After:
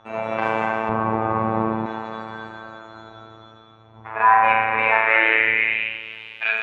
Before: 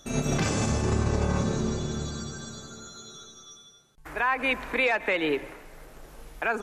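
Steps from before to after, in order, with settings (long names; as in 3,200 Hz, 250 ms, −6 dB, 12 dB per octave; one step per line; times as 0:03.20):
wind on the microphone 96 Hz −37 dBFS
sine wavefolder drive 8 dB, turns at −6 dBFS
on a send: delay that swaps between a low-pass and a high-pass 242 ms, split 2,200 Hz, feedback 53%, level −5 dB
on the sum: spring reverb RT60 1.4 s, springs 33 ms, chirp 25 ms, DRR −2 dB
phases set to zero 111 Hz
drawn EQ curve 1,500 Hz 0 dB, 2,500 Hz +6 dB, 5,500 Hz −12 dB
band-pass filter sweep 950 Hz → 3,200 Hz, 0:04.83–0:06.07
0:00.89–0:01.86: spectral tilt −3.5 dB per octave
level +2 dB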